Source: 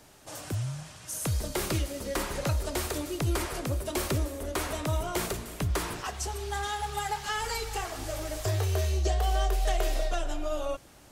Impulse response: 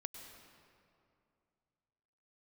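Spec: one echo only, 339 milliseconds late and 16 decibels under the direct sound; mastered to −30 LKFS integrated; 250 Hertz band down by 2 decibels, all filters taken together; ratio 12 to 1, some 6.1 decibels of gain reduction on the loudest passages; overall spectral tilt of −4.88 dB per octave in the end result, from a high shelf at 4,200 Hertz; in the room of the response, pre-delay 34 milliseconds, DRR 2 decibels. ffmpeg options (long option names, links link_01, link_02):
-filter_complex "[0:a]equalizer=frequency=250:width_type=o:gain=-3,highshelf=frequency=4200:gain=-7.5,acompressor=threshold=-29dB:ratio=12,aecho=1:1:339:0.158,asplit=2[link_01][link_02];[1:a]atrim=start_sample=2205,adelay=34[link_03];[link_02][link_03]afir=irnorm=-1:irlink=0,volume=1dB[link_04];[link_01][link_04]amix=inputs=2:normalize=0,volume=3.5dB"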